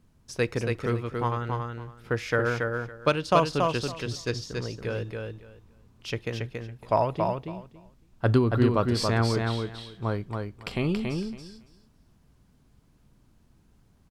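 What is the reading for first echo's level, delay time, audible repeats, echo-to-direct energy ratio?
−4.0 dB, 279 ms, 3, −4.0 dB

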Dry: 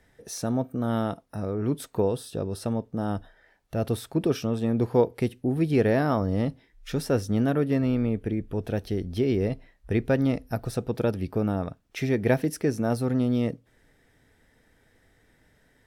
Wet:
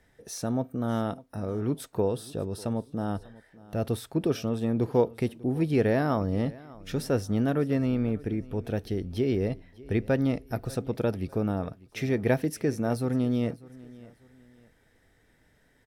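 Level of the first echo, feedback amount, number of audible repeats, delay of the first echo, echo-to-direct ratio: −21.0 dB, 33%, 2, 596 ms, −20.5 dB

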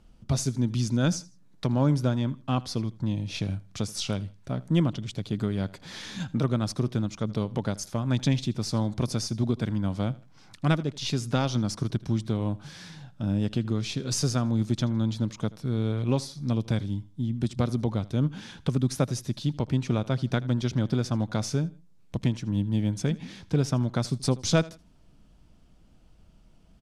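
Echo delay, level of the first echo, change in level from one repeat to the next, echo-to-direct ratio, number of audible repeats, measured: 80 ms, −21.0 dB, −10.0 dB, −20.5 dB, 2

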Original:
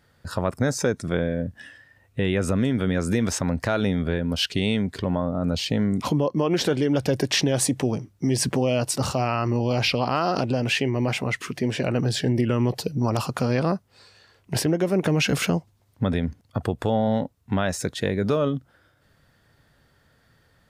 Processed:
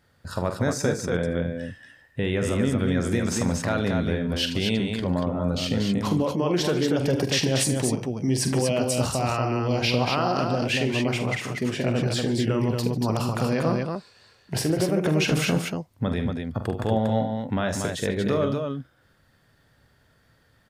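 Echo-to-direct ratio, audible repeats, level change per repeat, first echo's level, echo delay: −2.5 dB, 4, repeats not evenly spaced, −8.5 dB, 45 ms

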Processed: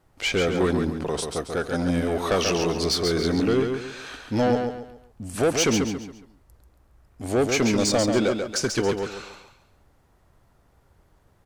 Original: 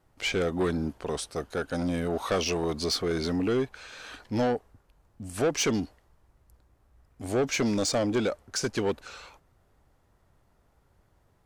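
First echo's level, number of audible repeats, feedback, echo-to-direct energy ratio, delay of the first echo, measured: −5.5 dB, 4, 34%, −5.0 dB, 138 ms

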